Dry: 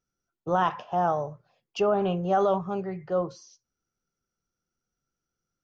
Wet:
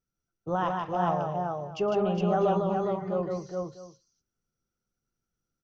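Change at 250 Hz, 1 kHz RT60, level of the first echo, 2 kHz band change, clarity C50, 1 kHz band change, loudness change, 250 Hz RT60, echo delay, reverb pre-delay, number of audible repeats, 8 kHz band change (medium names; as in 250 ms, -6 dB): +1.5 dB, no reverb, -17.0 dB, -3.0 dB, no reverb, -2.0 dB, -1.5 dB, no reverb, 115 ms, no reverb, 4, no reading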